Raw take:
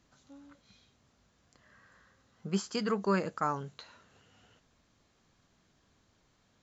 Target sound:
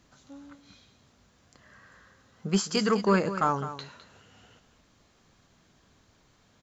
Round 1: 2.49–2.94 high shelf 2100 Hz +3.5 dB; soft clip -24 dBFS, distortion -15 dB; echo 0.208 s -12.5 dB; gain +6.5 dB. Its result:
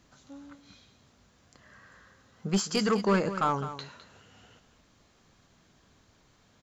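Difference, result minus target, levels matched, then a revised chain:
soft clip: distortion +10 dB
2.49–2.94 high shelf 2100 Hz +3.5 dB; soft clip -17 dBFS, distortion -26 dB; echo 0.208 s -12.5 dB; gain +6.5 dB

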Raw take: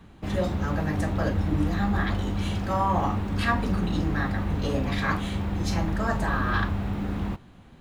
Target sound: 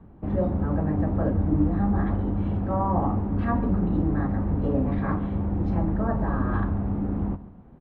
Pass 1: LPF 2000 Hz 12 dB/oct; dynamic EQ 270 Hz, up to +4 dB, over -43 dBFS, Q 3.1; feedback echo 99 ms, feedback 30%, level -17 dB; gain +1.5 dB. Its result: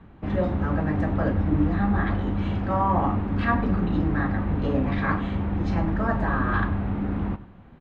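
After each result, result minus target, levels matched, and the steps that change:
2000 Hz band +9.5 dB; echo 42 ms early
change: LPF 850 Hz 12 dB/oct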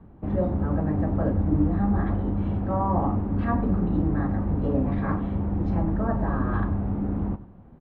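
echo 42 ms early
change: feedback echo 0.141 s, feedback 30%, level -17 dB

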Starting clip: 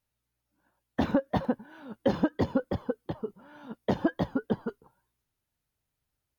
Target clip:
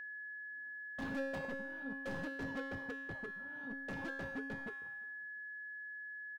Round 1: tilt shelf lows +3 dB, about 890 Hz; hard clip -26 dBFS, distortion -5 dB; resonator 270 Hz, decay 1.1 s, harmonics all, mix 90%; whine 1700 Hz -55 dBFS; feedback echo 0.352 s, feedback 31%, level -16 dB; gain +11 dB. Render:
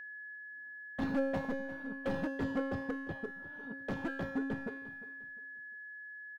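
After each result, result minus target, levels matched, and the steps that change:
echo-to-direct +11 dB; hard clip: distortion -4 dB
change: feedback echo 0.352 s, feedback 31%, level -27 dB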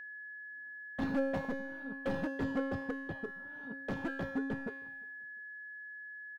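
hard clip: distortion -4 dB
change: hard clip -35.5 dBFS, distortion -1 dB

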